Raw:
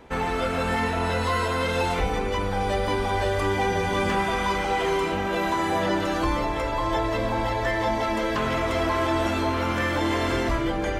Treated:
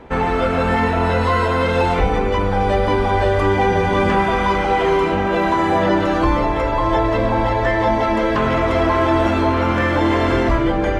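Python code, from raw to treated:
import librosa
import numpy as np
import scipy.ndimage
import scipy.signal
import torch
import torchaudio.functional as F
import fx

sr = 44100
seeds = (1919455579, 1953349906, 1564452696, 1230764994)

y = fx.lowpass(x, sr, hz=1900.0, slope=6)
y = y * librosa.db_to_amplitude(8.5)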